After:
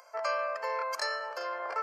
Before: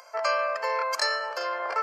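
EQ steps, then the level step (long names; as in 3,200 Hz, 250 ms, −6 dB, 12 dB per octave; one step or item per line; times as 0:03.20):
dynamic equaliser 7,600 Hz, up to −4 dB, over −58 dBFS, Q 6.5
parametric band 3,700 Hz −4 dB 1.6 octaves
−5.0 dB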